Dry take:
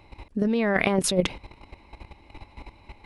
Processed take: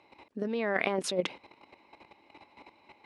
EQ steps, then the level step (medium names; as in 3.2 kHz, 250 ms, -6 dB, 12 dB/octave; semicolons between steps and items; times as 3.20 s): high-pass 290 Hz 12 dB/octave; distance through air 56 m; -5.0 dB